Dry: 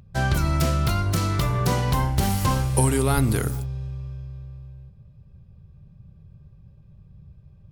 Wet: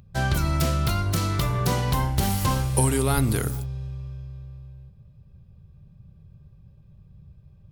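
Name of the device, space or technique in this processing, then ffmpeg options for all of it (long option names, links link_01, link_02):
presence and air boost: -af "equalizer=frequency=3600:width_type=o:width=0.77:gain=2,highshelf=frequency=11000:gain=5,volume=-1.5dB"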